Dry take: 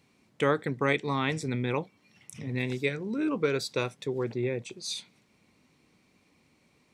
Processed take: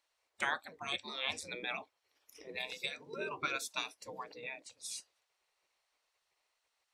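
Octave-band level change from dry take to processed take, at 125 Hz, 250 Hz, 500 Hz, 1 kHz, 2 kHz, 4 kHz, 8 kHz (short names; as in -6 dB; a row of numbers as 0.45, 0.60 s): -26.5, -21.5, -16.5, -7.0, -5.0, -2.0, -3.0 dB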